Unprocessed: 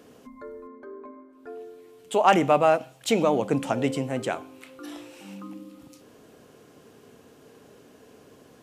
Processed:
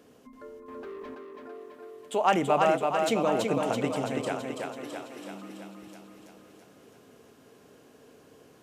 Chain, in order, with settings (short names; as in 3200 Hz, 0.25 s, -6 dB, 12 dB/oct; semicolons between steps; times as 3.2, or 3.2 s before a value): 0.68–1.15 sample leveller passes 3; on a send: thinning echo 0.331 s, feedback 62%, high-pass 150 Hz, level -3.5 dB; on the sum: gain -5 dB